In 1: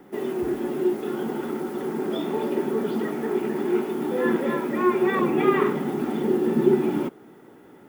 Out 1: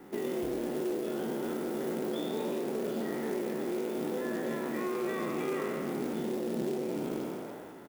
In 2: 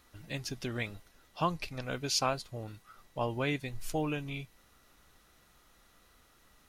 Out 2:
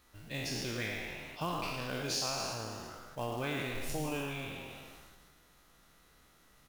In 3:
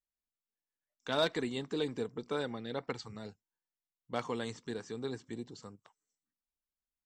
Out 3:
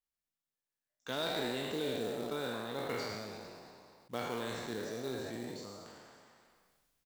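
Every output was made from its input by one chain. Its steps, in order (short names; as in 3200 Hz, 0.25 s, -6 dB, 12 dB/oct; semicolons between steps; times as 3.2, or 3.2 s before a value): spectral trails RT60 1.20 s; dynamic EQ 1000 Hz, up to -4 dB, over -37 dBFS, Q 0.87; compressor 16:1, threshold -27 dBFS; on a send: frequency-shifting echo 0.112 s, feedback 48%, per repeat +130 Hz, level -8.5 dB; on the sum: short-mantissa float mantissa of 2-bit; sustainer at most 25 dB/s; gain -4 dB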